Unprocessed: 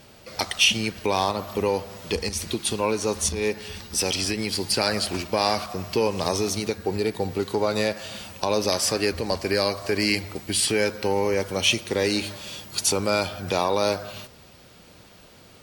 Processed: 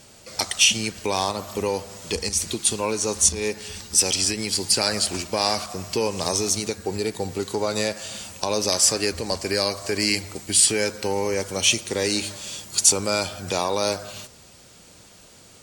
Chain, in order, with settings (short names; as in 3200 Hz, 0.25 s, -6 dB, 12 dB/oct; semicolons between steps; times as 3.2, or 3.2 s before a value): bell 7500 Hz +12.5 dB 0.92 oct; gain -1.5 dB